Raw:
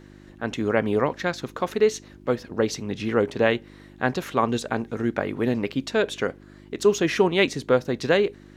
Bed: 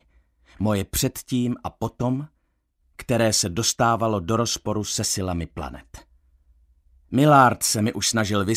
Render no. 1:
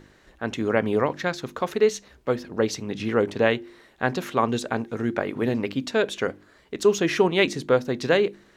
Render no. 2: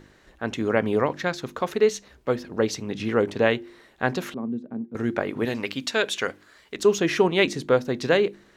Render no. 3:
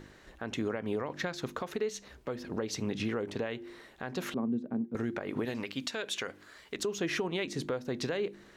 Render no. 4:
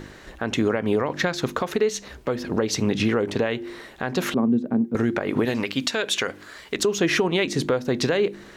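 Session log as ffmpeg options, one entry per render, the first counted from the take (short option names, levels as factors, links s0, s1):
-af "bandreject=f=50:t=h:w=4,bandreject=f=100:t=h:w=4,bandreject=f=150:t=h:w=4,bandreject=f=200:t=h:w=4,bandreject=f=250:t=h:w=4,bandreject=f=300:t=h:w=4,bandreject=f=350:t=h:w=4"
-filter_complex "[0:a]asettb=1/sr,asplit=3[s0][s1][s2];[s0]atrim=end=4.344[s3];[s1]atrim=start=4.34:end=4.95,asetpts=PTS-STARTPTS,afade=t=in:d=0.004:c=qsin,afade=t=out:st=0.606:d=0.004:c=qsin,bandpass=f=220:t=q:w=2.7[s4];[s2]atrim=start=4.946[s5];[s3][s4]acrossfade=d=0.004:c1=hsin:c2=qsin[s6];[s6][s5]acrossfade=d=0.004:c1=qsin:c2=hsin,asettb=1/sr,asplit=3[s7][s8][s9];[s7]atrim=end=5.454[s10];[s8]atrim=start=5.45:end=6.77,asetpts=PTS-STARTPTS,afade=t=in:d=0.004:c=qsin,afade=t=out:st=1.316:d=0.004:c=qsin,tiltshelf=f=870:g=-6[s11];[s9]atrim=start=6.766[s12];[s10][s11]acrossfade=d=0.004:c1=hsin:c2=qsin[s13];[s13][s12]acrossfade=d=0.004:c1=qsin:c2=hsin"
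-af "acompressor=threshold=0.0562:ratio=5,alimiter=limit=0.0708:level=0:latency=1:release=210"
-af "volume=3.76"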